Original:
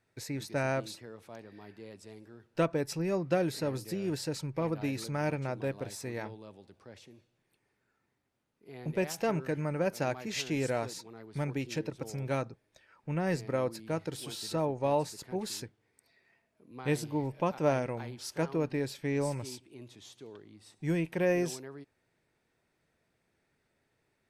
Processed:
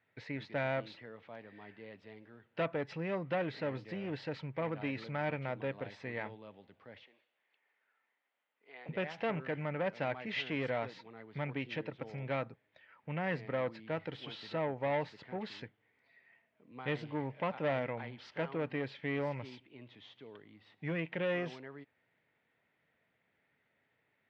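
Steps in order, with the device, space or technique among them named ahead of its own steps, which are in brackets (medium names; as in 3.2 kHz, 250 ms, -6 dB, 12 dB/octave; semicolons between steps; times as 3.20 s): 7.03–8.89 s: high-pass 570 Hz 12 dB/octave; guitar amplifier (valve stage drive 27 dB, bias 0.3; tone controls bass -3 dB, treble -11 dB; cabinet simulation 95–4200 Hz, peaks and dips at 360 Hz -7 dB, 2 kHz +7 dB, 3.1 kHz +6 dB)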